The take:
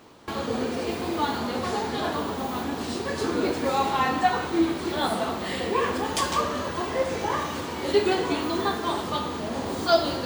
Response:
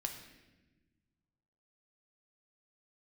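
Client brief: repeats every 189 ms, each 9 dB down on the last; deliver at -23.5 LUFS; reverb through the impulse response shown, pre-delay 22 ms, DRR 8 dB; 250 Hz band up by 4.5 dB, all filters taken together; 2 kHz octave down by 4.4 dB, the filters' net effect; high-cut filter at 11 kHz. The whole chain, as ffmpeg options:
-filter_complex "[0:a]lowpass=11000,equalizer=f=250:t=o:g=6,equalizer=f=2000:t=o:g=-6,aecho=1:1:189|378|567|756:0.355|0.124|0.0435|0.0152,asplit=2[s0][s1];[1:a]atrim=start_sample=2205,adelay=22[s2];[s1][s2]afir=irnorm=-1:irlink=0,volume=0.422[s3];[s0][s3]amix=inputs=2:normalize=0,volume=1.06"

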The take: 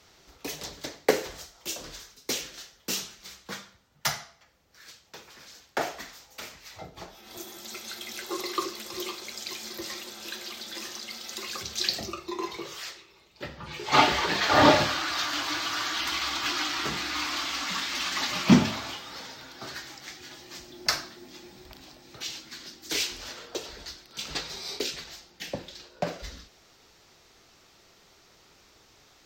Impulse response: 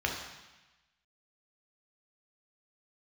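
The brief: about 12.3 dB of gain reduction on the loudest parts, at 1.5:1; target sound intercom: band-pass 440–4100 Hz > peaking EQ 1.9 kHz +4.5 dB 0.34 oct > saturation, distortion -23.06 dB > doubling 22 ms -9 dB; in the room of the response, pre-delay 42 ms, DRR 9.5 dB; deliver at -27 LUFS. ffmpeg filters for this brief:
-filter_complex "[0:a]acompressor=threshold=0.00398:ratio=1.5,asplit=2[s0][s1];[1:a]atrim=start_sample=2205,adelay=42[s2];[s1][s2]afir=irnorm=-1:irlink=0,volume=0.126[s3];[s0][s3]amix=inputs=2:normalize=0,highpass=440,lowpass=4100,equalizer=f=1900:t=o:w=0.34:g=4.5,asoftclip=threshold=0.0841,asplit=2[s4][s5];[s5]adelay=22,volume=0.355[s6];[s4][s6]amix=inputs=2:normalize=0,volume=4.22"

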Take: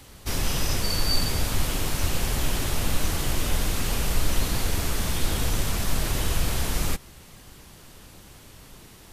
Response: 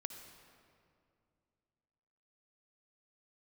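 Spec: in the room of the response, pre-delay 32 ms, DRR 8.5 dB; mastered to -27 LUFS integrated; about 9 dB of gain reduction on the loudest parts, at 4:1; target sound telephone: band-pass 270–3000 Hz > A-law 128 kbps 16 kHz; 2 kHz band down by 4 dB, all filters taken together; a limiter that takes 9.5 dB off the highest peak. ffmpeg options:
-filter_complex "[0:a]equalizer=f=2000:t=o:g=-4,acompressor=threshold=0.0447:ratio=4,alimiter=level_in=1.41:limit=0.0631:level=0:latency=1,volume=0.708,asplit=2[s0][s1];[1:a]atrim=start_sample=2205,adelay=32[s2];[s1][s2]afir=irnorm=-1:irlink=0,volume=0.501[s3];[s0][s3]amix=inputs=2:normalize=0,highpass=270,lowpass=3000,volume=8.41" -ar 16000 -c:a pcm_alaw

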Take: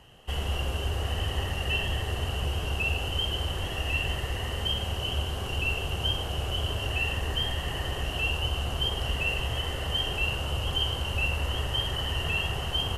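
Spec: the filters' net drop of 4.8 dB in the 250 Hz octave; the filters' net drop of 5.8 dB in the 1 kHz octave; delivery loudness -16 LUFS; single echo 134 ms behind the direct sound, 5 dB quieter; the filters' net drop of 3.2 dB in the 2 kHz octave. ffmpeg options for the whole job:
-af "equalizer=f=250:t=o:g=-7.5,equalizer=f=1000:t=o:g=-6.5,equalizer=f=2000:t=o:g=-4,aecho=1:1:134:0.562,volume=5.01"

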